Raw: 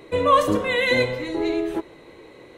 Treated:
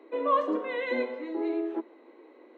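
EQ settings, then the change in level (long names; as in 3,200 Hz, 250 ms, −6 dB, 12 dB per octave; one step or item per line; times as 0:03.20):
Chebyshev high-pass with heavy ripple 230 Hz, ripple 3 dB
head-to-tape spacing loss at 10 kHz 34 dB
−4.0 dB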